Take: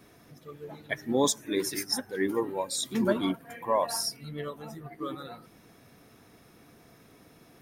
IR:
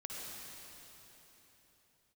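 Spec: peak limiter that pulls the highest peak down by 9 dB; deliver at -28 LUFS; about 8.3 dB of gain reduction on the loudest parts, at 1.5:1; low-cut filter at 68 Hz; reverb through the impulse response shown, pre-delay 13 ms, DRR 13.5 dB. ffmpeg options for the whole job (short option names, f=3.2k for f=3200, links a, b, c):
-filter_complex "[0:a]highpass=68,acompressor=threshold=-44dB:ratio=1.5,alimiter=level_in=6dB:limit=-24dB:level=0:latency=1,volume=-6dB,asplit=2[a][b];[1:a]atrim=start_sample=2205,adelay=13[c];[b][c]afir=irnorm=-1:irlink=0,volume=-13dB[d];[a][d]amix=inputs=2:normalize=0,volume=13dB"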